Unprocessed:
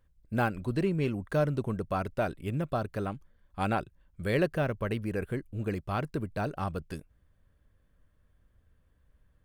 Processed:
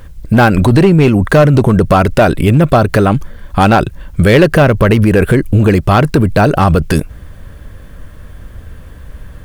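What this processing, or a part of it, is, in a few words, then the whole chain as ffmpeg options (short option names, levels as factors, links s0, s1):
loud club master: -af "acompressor=threshold=0.02:ratio=1.5,asoftclip=type=hard:threshold=0.0447,alimiter=level_in=59.6:limit=0.891:release=50:level=0:latency=1,volume=0.891"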